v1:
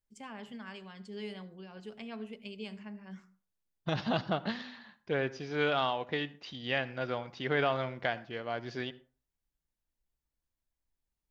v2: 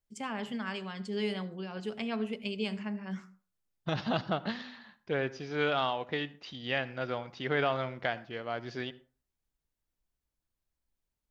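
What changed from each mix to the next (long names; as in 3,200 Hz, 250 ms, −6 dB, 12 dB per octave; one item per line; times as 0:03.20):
first voice +8.5 dB
master: remove notch filter 1,300 Hz, Q 29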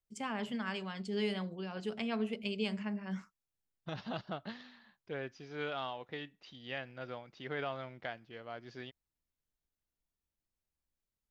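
second voice −8.0 dB
reverb: off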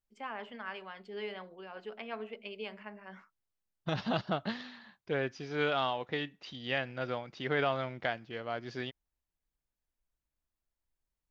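first voice: add band-pass filter 460–2,400 Hz
second voice +8.0 dB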